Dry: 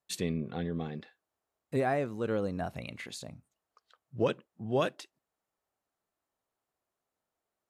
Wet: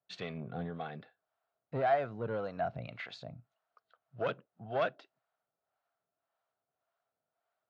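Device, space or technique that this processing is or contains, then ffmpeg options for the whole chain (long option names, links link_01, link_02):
guitar amplifier with harmonic tremolo: -filter_complex "[0:a]acrossover=split=540[link_01][link_02];[link_01]aeval=exprs='val(0)*(1-0.7/2+0.7/2*cos(2*PI*1.8*n/s))':channel_layout=same[link_03];[link_02]aeval=exprs='val(0)*(1-0.7/2-0.7/2*cos(2*PI*1.8*n/s))':channel_layout=same[link_04];[link_03][link_04]amix=inputs=2:normalize=0,asoftclip=type=tanh:threshold=-28.5dB,highpass=110,equalizer=frequency=120:width_type=q:width=4:gain=6,equalizer=frequency=230:width_type=q:width=4:gain=-4,equalizer=frequency=340:width_type=q:width=4:gain=-6,equalizer=frequency=680:width_type=q:width=4:gain=10,equalizer=frequency=1400:width_type=q:width=4:gain=9,lowpass=frequency=4300:width=0.5412,lowpass=frequency=4300:width=1.3066"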